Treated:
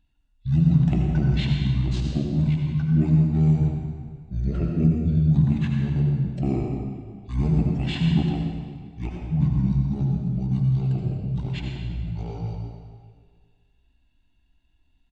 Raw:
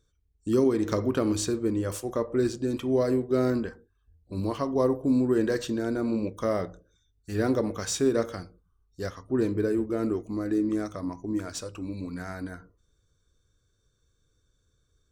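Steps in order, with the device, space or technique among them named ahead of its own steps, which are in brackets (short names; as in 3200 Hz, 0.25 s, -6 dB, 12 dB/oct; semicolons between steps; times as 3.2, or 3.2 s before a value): monster voice (pitch shift -8.5 st; formant shift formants -4.5 st; low shelf 230 Hz +7 dB; reverb RT60 1.8 s, pre-delay 70 ms, DRR 0.5 dB); gain -2 dB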